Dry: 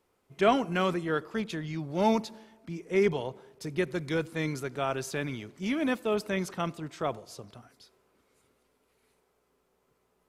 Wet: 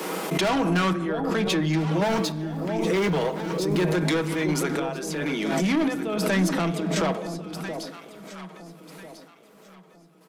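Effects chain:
0:02.02–0:03.96: mu-law and A-law mismatch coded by mu
Butterworth high-pass 160 Hz 96 dB per octave
comb filter 6.3 ms, depth 45%
in parallel at +2 dB: downward compressor, threshold −39 dBFS, peak gain reduction 20 dB
on the sum: gate pattern "..xxxx..xxxx.xx." 97 BPM −12 dB
soft clipping −28.5 dBFS, distortion −7 dB
delay that swaps between a low-pass and a high-pass 672 ms, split 850 Hz, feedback 54%, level −7.5 dB
on a send at −10.5 dB: convolution reverb RT60 1.1 s, pre-delay 3 ms
on the sum: background raised ahead of every attack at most 24 dB per second
level +7.5 dB

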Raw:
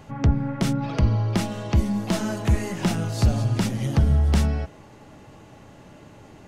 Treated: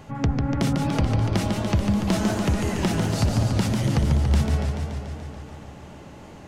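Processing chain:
downward compressor, threshold −20 dBFS, peak gain reduction 7 dB
feedback echo with a swinging delay time 144 ms, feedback 73%, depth 156 cents, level −5 dB
level +1.5 dB

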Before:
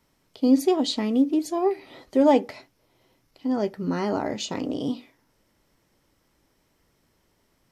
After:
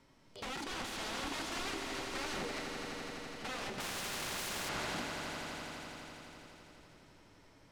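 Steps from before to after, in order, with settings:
0:00.72–0:01.57: high-pass filter 680 Hz 12 dB per octave
harmonic and percussive parts rebalanced percussive −15 dB
downward compressor 6 to 1, threshold −30 dBFS, peak gain reduction 15.5 dB
brickwall limiter −29 dBFS, peak gain reduction 7 dB
soft clipping −30.5 dBFS, distortion −20 dB
flanger 0.99 Hz, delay 7.1 ms, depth 3.9 ms, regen +62%
wrap-around overflow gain 47 dB
high-frequency loss of the air 62 metres
echo that builds up and dies away 84 ms, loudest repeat 5, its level −9 dB
0:03.80–0:04.69: every bin compressed towards the loudest bin 2 to 1
level +11.5 dB

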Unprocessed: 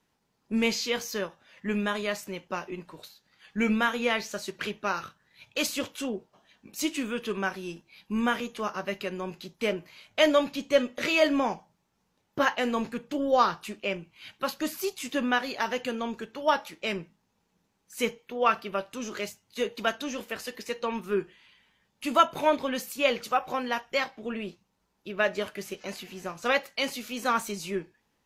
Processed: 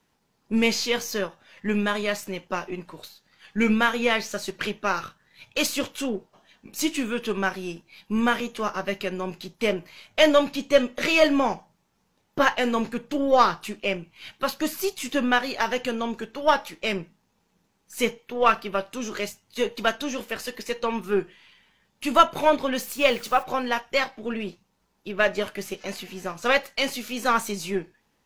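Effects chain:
gain on one half-wave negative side −3 dB
0:22.77–0:23.42: background noise white −56 dBFS
level +5.5 dB

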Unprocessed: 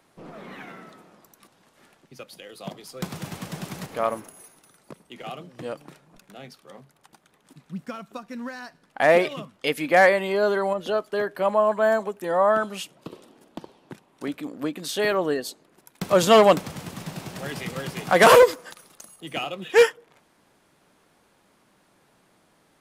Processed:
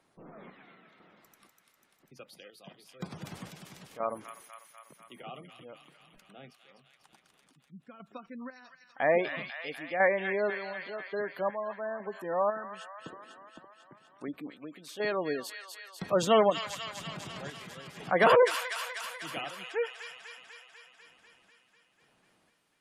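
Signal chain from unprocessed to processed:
square-wave tremolo 1 Hz, depth 60%, duty 50%
delay with a high-pass on its return 247 ms, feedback 69%, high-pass 1,700 Hz, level −4 dB
gate on every frequency bin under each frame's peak −25 dB strong
level −8 dB

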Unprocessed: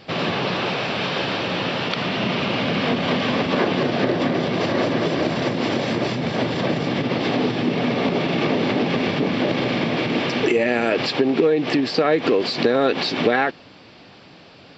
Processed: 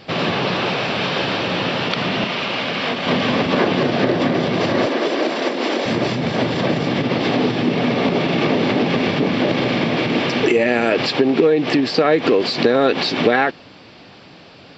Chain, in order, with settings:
0:02.24–0:03.07: low-shelf EQ 400 Hz −11 dB
0:04.86–0:05.86: high-pass filter 270 Hz 24 dB per octave
level +3 dB

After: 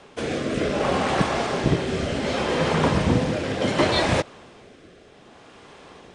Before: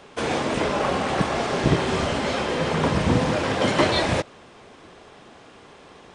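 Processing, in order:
rotating-speaker cabinet horn 0.65 Hz
level +2 dB

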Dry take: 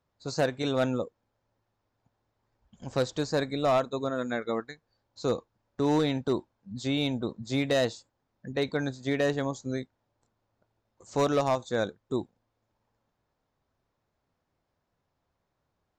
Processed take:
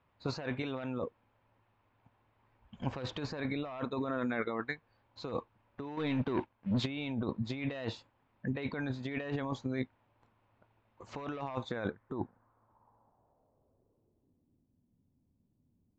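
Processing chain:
graphic EQ with 15 bands 100 Hz +4 dB, 250 Hz +3 dB, 1,000 Hz +6 dB
compressor whose output falls as the input rises −33 dBFS, ratio −1
0:05.97–0:06.86: leveller curve on the samples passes 2
low-pass filter sweep 2,600 Hz → 240 Hz, 0:11.63–0:14.69
level −4 dB

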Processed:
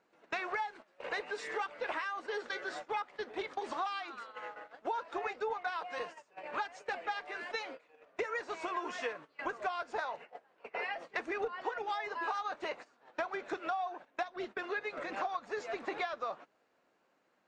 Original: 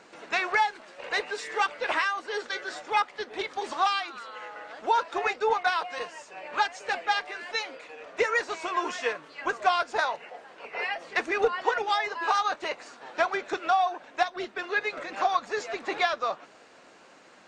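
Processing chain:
noise gate −40 dBFS, range −19 dB
high-shelf EQ 2,900 Hz −8.5 dB
downward compressor 4 to 1, threshold −35 dBFS, peak gain reduction 14.5 dB

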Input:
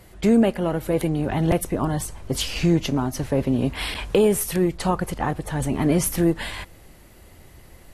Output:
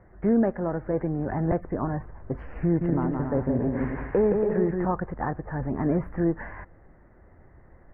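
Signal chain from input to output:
elliptic low-pass filter 1,800 Hz, stop band 50 dB
0:02.64–0:04.85: bouncing-ball delay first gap 170 ms, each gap 0.65×, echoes 5
level −4 dB

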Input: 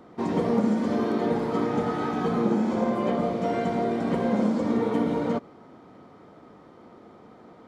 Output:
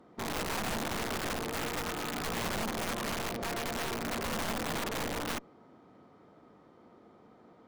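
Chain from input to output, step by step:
harmonic generator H 5 −28 dB, 6 −27 dB, 7 −34 dB, 8 −19 dB, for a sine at −10.5 dBFS
wrap-around overflow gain 19.5 dB
level −9 dB

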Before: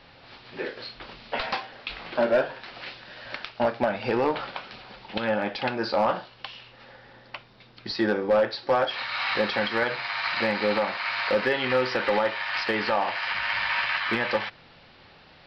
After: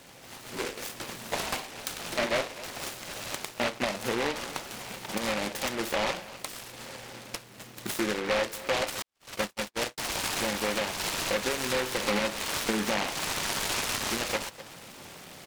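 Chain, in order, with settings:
high-pass filter 120 Hz 12 dB per octave
high-shelf EQ 4,300 Hz −3 dB
single-tap delay 251 ms −23 dB
automatic gain control gain up to 5.5 dB
0:09.02–0:09.98: noise gate −18 dBFS, range −59 dB
0:12.03–0:13.06: parametric band 200 Hz +11 dB 1.5 octaves
downward compressor 2 to 1, threshold −38 dBFS, peak gain reduction 14 dB
short delay modulated by noise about 1,500 Hz, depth 0.21 ms
level +1.5 dB

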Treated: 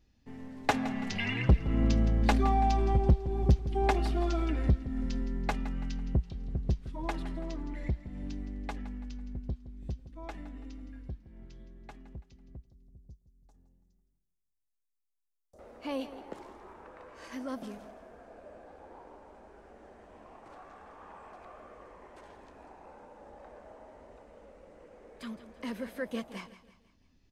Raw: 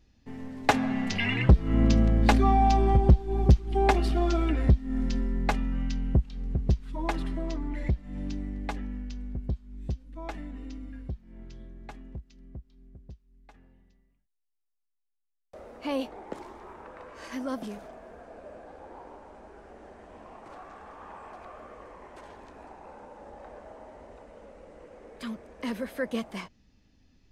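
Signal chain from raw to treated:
0:12.57–0:15.59: drawn EQ curve 100 Hz 0 dB, 900 Hz −10 dB, 2,300 Hz −24 dB, 6,400 Hz +2 dB
repeating echo 166 ms, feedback 44%, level −14.5 dB
level −5 dB

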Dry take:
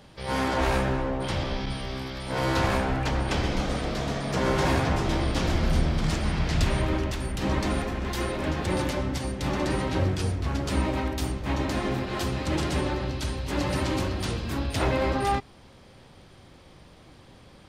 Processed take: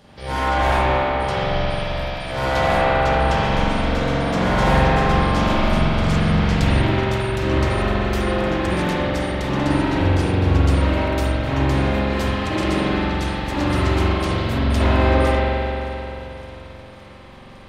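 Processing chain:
feedback echo with a high-pass in the loop 562 ms, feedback 78%, level −21.5 dB
spring reverb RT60 3.2 s, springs 44 ms, chirp 40 ms, DRR −8 dB

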